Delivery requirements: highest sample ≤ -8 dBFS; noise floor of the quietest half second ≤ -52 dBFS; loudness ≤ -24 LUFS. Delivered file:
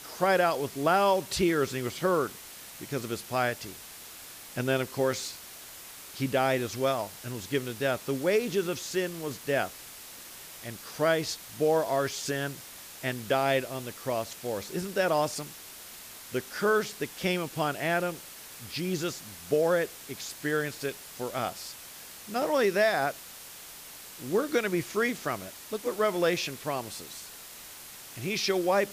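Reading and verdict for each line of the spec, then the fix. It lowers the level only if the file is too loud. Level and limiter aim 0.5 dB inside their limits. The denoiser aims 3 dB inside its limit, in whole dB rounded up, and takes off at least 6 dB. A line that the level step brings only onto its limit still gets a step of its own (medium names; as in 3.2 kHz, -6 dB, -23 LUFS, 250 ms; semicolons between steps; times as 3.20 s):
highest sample -12.0 dBFS: pass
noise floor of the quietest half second -46 dBFS: fail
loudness -29.5 LUFS: pass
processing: noise reduction 9 dB, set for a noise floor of -46 dBFS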